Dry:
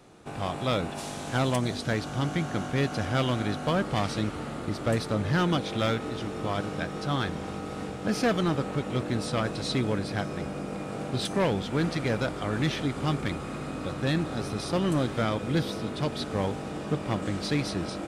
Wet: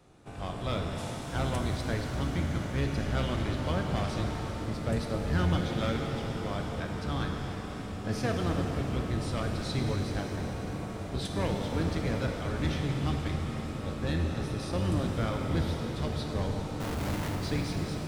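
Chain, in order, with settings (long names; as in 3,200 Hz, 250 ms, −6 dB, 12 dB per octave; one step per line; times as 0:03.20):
sub-octave generator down 1 octave, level +2 dB
0:16.80–0:17.35: comparator with hysteresis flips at −43.5 dBFS
reverb with rising layers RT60 3.7 s, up +7 semitones, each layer −8 dB, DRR 2 dB
level −7.5 dB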